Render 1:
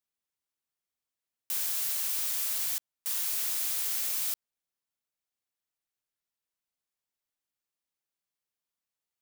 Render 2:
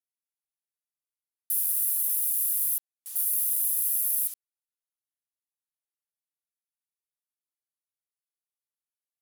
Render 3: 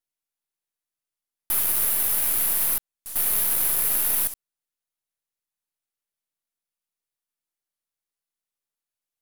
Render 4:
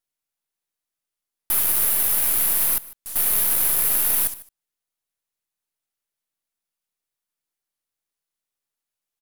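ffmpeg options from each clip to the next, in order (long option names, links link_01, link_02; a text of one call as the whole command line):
ffmpeg -i in.wav -af "afwtdn=0.0158,highpass=frequency=1000:poles=1,equalizer=frequency=11000:width=1:gain=14,volume=1dB" out.wav
ffmpeg -i in.wav -af "aeval=exprs='if(lt(val(0),0),0.447*val(0),val(0))':channel_layout=same,volume=6dB" out.wav
ffmpeg -i in.wav -af "aecho=1:1:150:0.1,volume=2.5dB" out.wav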